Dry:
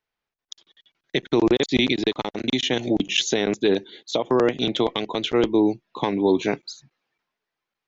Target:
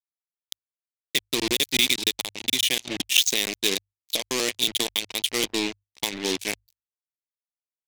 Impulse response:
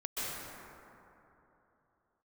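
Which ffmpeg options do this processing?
-af "acrusher=bits=3:mix=0:aa=0.5,bandreject=f=50:t=h:w=6,bandreject=f=100:t=h:w=6,aeval=exprs='0.447*(cos(1*acos(clip(val(0)/0.447,-1,1)))-cos(1*PI/2))+0.112*(cos(3*acos(clip(val(0)/0.447,-1,1)))-cos(3*PI/2))+0.0126*(cos(5*acos(clip(val(0)/0.447,-1,1)))-cos(5*PI/2))+0.00355*(cos(6*acos(clip(val(0)/0.447,-1,1)))-cos(6*PI/2))':c=same,aexciter=amount=4:drive=8.3:freq=2k,agate=range=-7dB:threshold=-39dB:ratio=16:detection=peak,volume=-5.5dB"

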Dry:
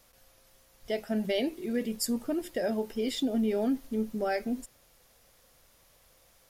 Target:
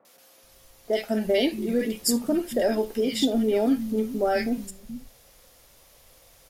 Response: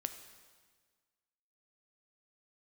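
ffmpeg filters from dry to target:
-filter_complex "[0:a]acrossover=split=180|1400[a][b][c];[c]adelay=50[d];[a]adelay=430[e];[e][b][d]amix=inputs=3:normalize=0,asplit=2[f][g];[1:a]atrim=start_sample=2205,atrim=end_sample=3528[h];[g][h]afir=irnorm=-1:irlink=0,volume=4dB[i];[f][i]amix=inputs=2:normalize=0"

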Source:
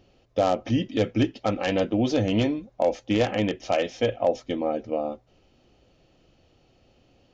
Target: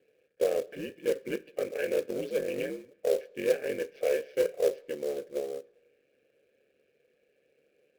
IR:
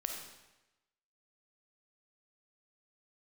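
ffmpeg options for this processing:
-filter_complex "[0:a]acontrast=26,acrusher=bits=9:mix=0:aa=0.000001,aeval=exprs='val(0)*sin(2*PI*77*n/s)':c=same,asplit=3[a][b][c];[a]bandpass=f=530:t=q:w=8,volume=0dB[d];[b]bandpass=f=1.84k:t=q:w=8,volume=-6dB[e];[c]bandpass=f=2.48k:t=q:w=8,volume=-9dB[f];[d][e][f]amix=inputs=3:normalize=0,acrusher=bits=4:mode=log:mix=0:aa=0.000001,asplit=2[g][h];[1:a]atrim=start_sample=2205,lowpass=4.6k[i];[h][i]afir=irnorm=-1:irlink=0,volume=-19.5dB[j];[g][j]amix=inputs=2:normalize=0,asetrate=40517,aresample=44100"

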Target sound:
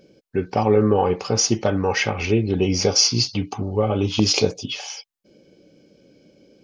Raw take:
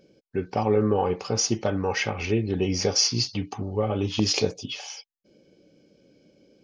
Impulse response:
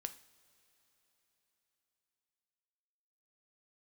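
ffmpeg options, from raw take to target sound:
-filter_complex "[0:a]asettb=1/sr,asplit=3[a][b][c];[a]atrim=end=2.274[d];[b]atrim=start=2.27:end=4.51,asetpts=PTS-STARTPTS,afade=t=in:d=0.004:c=qsin,afade=t=out:st=2.236:d=0.004:c=qsin,bandreject=f=1.8k:w=7[e];[c]atrim=start=4.506[f];[d][e]acrossfade=d=0.004:c1=hsin:c2=qsin[g];[g][f]acrossfade=d=0.004:c1=qsin:c2=hsin,volume=5dB"

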